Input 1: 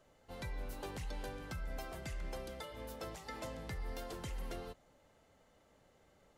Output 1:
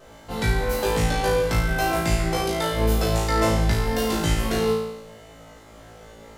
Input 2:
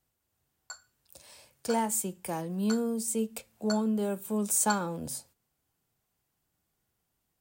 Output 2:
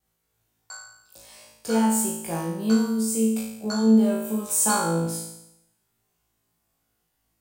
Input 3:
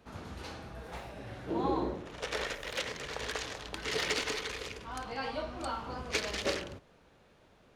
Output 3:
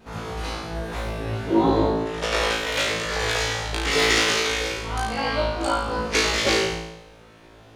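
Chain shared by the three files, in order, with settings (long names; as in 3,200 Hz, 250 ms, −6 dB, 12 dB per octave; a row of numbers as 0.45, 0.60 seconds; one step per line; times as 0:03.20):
pitch vibrato 1.6 Hz 24 cents
flutter between parallel walls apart 3.1 metres, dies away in 0.8 s
loudness normalisation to −23 LKFS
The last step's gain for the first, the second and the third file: +17.0, 0.0, +8.0 decibels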